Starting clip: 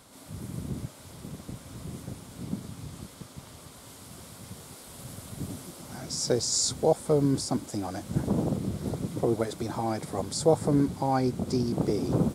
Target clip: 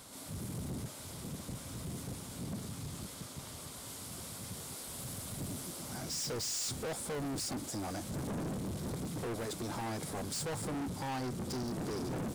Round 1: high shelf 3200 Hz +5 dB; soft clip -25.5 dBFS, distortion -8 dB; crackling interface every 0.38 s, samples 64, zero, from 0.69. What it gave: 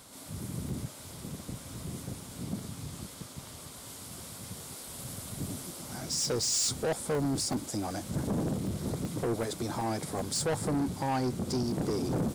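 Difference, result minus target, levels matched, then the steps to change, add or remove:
soft clip: distortion -6 dB
change: soft clip -35.5 dBFS, distortion -2 dB

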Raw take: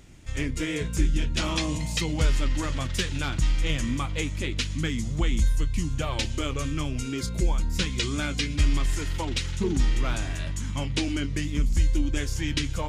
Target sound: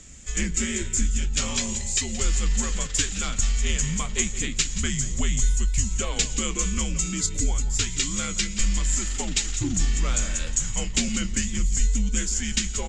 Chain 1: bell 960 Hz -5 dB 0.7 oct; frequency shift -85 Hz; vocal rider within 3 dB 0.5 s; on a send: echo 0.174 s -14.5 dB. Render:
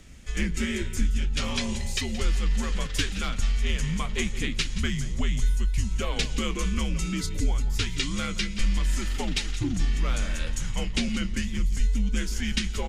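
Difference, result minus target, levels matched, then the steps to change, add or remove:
8000 Hz band -9.5 dB
add first: synth low-pass 7400 Hz, resonance Q 8.7

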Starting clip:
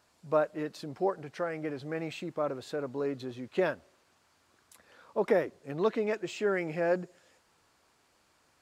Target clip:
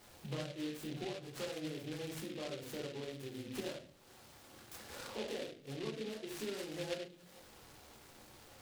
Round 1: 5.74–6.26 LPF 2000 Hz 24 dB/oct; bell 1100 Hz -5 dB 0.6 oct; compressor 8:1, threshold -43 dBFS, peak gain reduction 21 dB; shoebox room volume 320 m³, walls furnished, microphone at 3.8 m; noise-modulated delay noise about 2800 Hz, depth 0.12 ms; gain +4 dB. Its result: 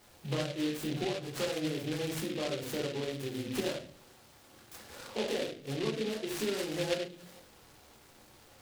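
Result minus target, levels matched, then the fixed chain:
compressor: peak gain reduction -8.5 dB
5.74–6.26 LPF 2000 Hz 24 dB/oct; bell 1100 Hz -5 dB 0.6 oct; compressor 8:1, threshold -52.5 dBFS, peak gain reduction 29.5 dB; shoebox room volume 320 m³, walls furnished, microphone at 3.8 m; noise-modulated delay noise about 2800 Hz, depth 0.12 ms; gain +4 dB

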